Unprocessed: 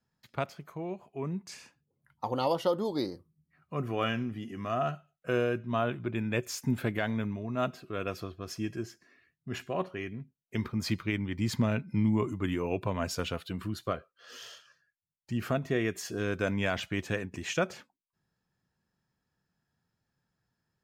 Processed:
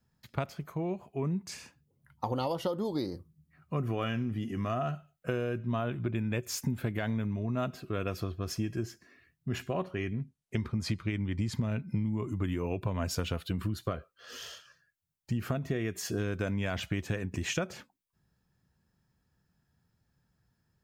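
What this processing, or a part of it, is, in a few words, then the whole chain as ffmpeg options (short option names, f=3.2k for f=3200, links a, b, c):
ASMR close-microphone chain: -filter_complex "[0:a]lowshelf=f=210:g=7.5,acompressor=threshold=-30dB:ratio=10,highshelf=f=10k:g=5,asettb=1/sr,asplit=3[a][b][c];[a]atrim=end=9.924[d];[b]atrim=start=9.92:end=11.55,asetpts=PTS-STARTPTS,afade=t=in:d=0.004:c=qsin,afade=t=out:st=1.626:d=0.004:c=qsin,lowpass=f=11k:w=0.5412,lowpass=f=11k:w=1.3066[e];[c]atrim=start=11.546[f];[d][e]acrossfade=d=0.004:c1=hsin:c2=qsin[g];[g][f]acrossfade=d=0.004:c1=qsin:c2=hsin,equalizer=f=64:t=o:w=0.81:g=4.5,volume=2dB"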